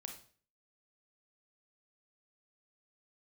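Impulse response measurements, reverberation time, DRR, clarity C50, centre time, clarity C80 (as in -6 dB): 0.45 s, 3.5 dB, 7.0 dB, 19 ms, 12.5 dB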